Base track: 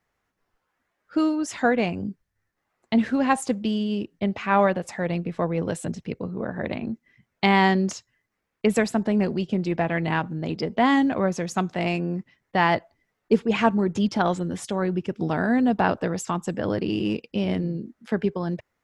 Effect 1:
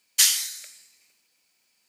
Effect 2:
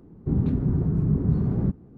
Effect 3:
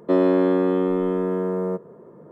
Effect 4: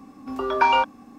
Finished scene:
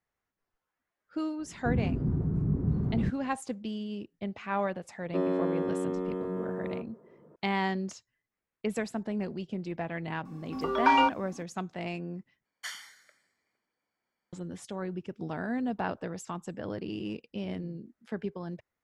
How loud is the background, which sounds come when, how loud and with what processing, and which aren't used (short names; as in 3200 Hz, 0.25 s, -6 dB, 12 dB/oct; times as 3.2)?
base track -11 dB
1.39 add 2 -6 dB
5.05 add 3 -11 dB
10.25 add 4 -4.5 dB
12.45 replace with 1 -5 dB + polynomial smoothing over 41 samples